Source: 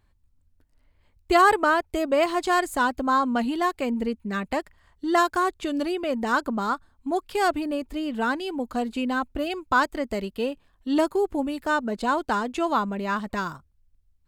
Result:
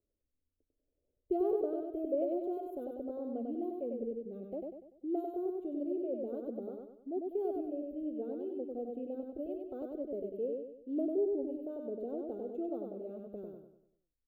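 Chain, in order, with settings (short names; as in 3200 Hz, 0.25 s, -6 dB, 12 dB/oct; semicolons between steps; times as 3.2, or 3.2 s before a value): inverse Chebyshev band-stop 930–9000 Hz, stop band 40 dB; three-band isolator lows -22 dB, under 370 Hz, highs -20 dB, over 7400 Hz; feedback echo 97 ms, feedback 43%, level -3 dB; gain -3 dB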